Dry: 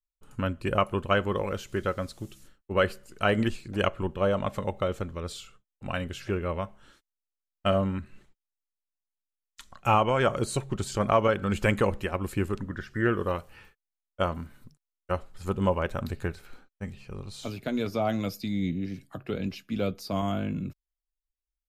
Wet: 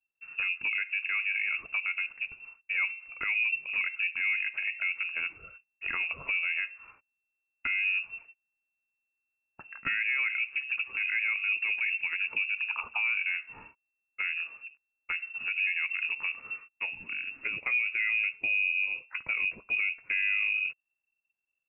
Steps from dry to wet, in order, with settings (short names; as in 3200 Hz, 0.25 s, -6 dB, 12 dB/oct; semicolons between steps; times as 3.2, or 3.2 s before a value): treble ducked by the level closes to 670 Hz, closed at -25 dBFS; inverted band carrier 2700 Hz; limiter -22 dBFS, peak gain reduction 10 dB; gain +2 dB